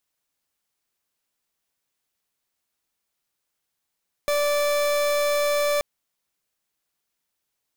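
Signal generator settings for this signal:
pulse wave 584 Hz, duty 39% −22 dBFS 1.53 s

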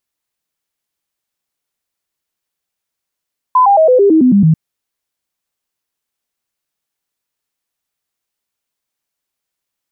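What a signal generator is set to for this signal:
stepped sweep 1,010 Hz down, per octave 3, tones 9, 0.11 s, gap 0.00 s −5 dBFS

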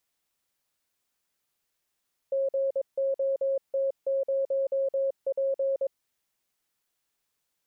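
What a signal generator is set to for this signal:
Morse code "GOT0P" 22 words per minute 543 Hz −23.5 dBFS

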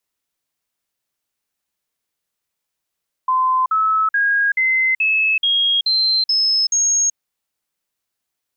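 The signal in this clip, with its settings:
stepped sweep 1,030 Hz up, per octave 3, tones 9, 0.38 s, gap 0.05 s −13.5 dBFS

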